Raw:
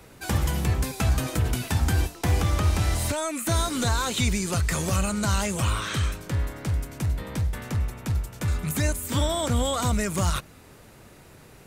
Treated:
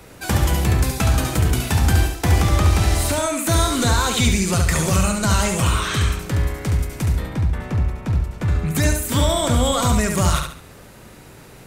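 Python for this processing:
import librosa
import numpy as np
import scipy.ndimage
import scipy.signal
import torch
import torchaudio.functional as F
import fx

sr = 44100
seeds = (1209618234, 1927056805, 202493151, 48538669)

p1 = fx.lowpass(x, sr, hz=1800.0, slope=6, at=(7.26, 8.75))
p2 = p1 + fx.echo_feedback(p1, sr, ms=70, feedback_pct=34, wet_db=-5, dry=0)
y = F.gain(torch.from_numpy(p2), 5.5).numpy()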